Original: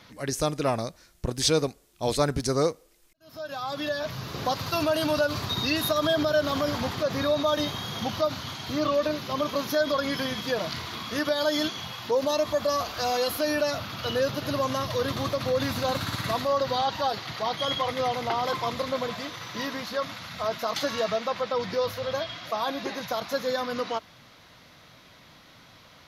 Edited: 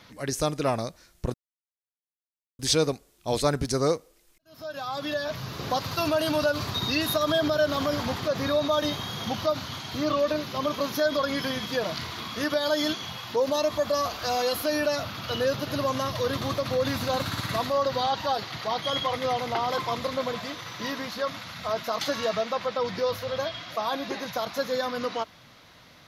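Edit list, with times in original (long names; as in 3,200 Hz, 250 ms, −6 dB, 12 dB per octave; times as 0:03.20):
0:01.34: splice in silence 1.25 s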